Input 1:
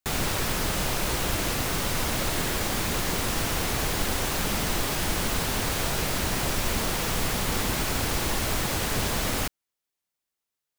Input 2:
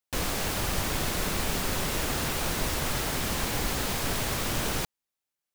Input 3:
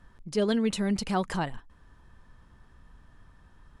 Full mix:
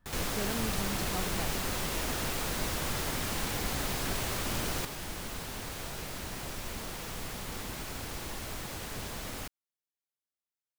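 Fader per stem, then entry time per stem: −12.5, −5.0, −12.0 decibels; 0.00, 0.00, 0.00 seconds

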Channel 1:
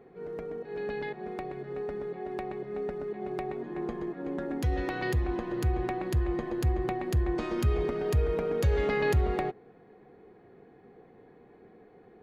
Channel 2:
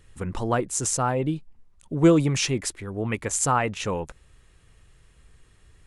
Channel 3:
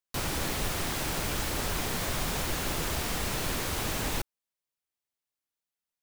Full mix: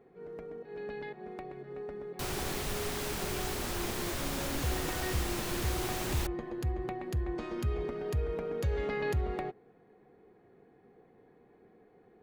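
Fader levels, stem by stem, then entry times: −6.0 dB, muted, −5.0 dB; 0.00 s, muted, 2.05 s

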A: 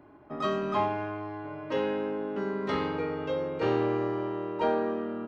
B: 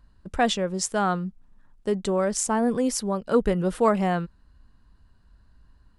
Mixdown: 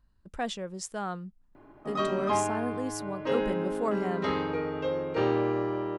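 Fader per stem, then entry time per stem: +0.5, −10.5 decibels; 1.55, 0.00 seconds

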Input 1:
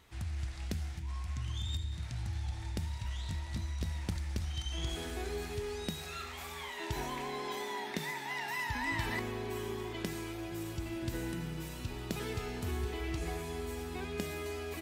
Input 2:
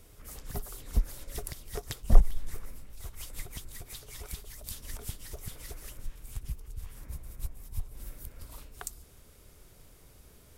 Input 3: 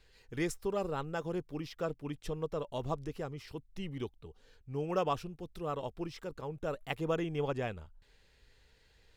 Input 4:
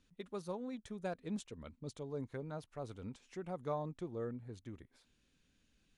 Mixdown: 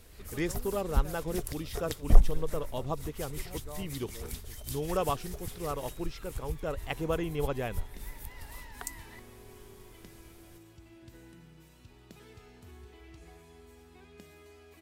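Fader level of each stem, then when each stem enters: −15.0, 0.0, +1.5, −7.5 decibels; 0.00, 0.00, 0.00, 0.00 seconds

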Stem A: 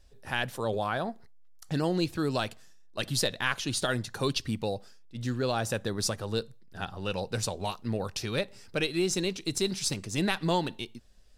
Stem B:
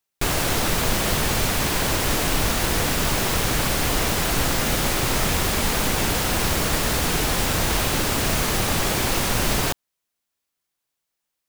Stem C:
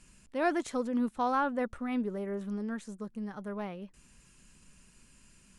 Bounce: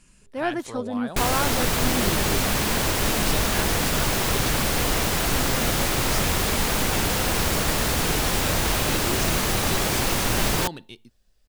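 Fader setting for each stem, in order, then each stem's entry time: −5.5, −1.0, +2.5 decibels; 0.10, 0.95, 0.00 seconds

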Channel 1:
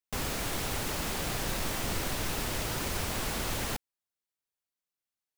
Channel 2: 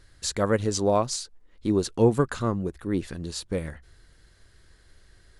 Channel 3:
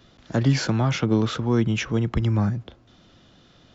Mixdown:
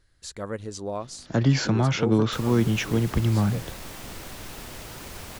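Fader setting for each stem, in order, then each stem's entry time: −6.5, −9.5, −0.5 decibels; 2.20, 0.00, 1.00 seconds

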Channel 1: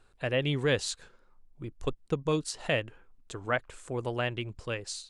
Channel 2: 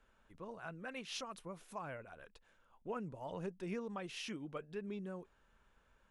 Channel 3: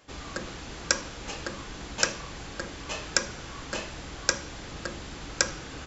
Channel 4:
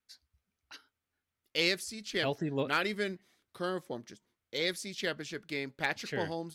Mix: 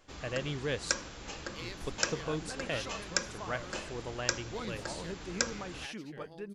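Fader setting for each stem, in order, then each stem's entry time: −7.5, +1.0, −6.0, −16.0 decibels; 0.00, 1.65, 0.00, 0.00 seconds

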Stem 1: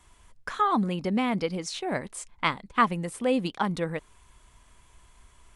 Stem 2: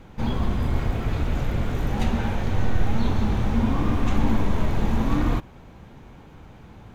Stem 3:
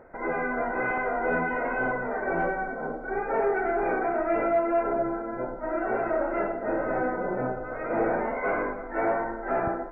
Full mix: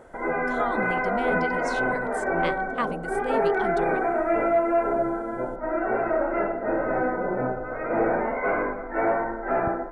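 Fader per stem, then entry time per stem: −6.5 dB, muted, +2.5 dB; 0.00 s, muted, 0.00 s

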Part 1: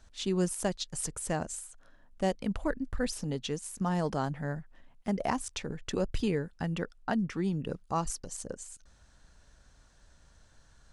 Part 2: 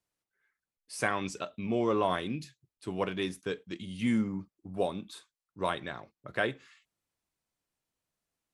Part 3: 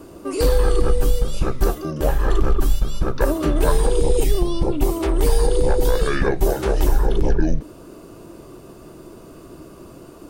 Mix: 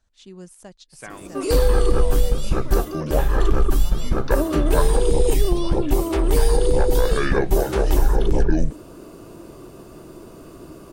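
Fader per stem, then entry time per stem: −11.5, −9.0, 0.0 decibels; 0.00, 0.00, 1.10 seconds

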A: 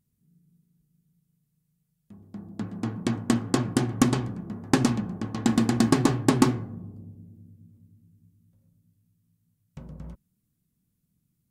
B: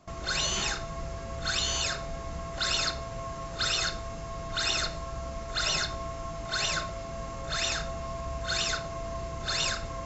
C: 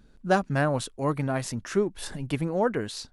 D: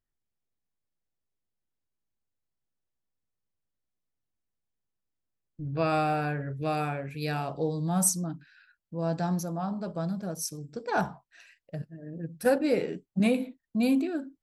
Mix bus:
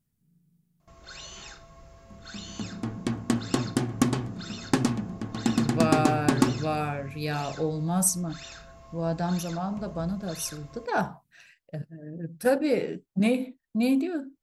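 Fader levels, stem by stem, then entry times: −2.5 dB, −14.0 dB, muted, +1.0 dB; 0.00 s, 0.80 s, muted, 0.00 s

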